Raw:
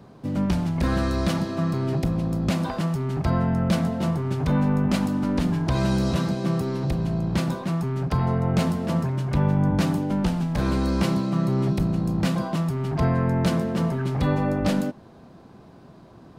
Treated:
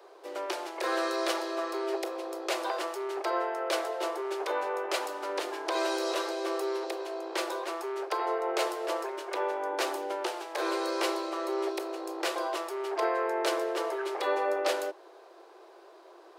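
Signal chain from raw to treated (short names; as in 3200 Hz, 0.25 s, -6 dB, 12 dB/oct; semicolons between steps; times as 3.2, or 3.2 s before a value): steep high-pass 340 Hz 96 dB/oct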